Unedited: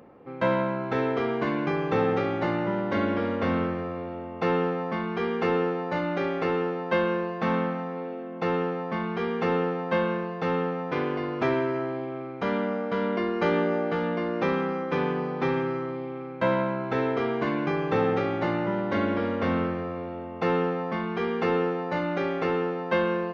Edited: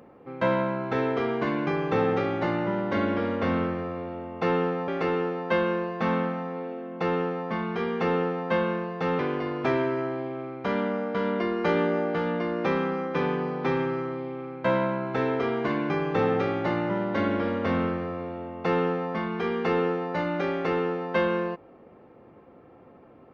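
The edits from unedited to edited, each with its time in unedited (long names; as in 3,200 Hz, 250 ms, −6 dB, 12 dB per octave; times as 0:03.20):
0:04.88–0:06.29: remove
0:10.60–0:10.96: remove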